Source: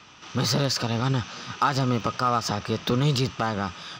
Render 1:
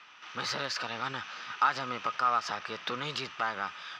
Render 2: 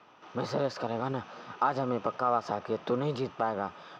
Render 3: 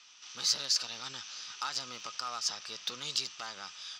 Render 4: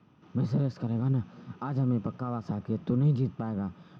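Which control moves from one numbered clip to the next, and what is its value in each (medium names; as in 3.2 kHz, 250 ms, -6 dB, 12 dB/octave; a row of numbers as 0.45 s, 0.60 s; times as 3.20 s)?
band-pass filter, frequency: 1.8 kHz, 610 Hz, 6 kHz, 180 Hz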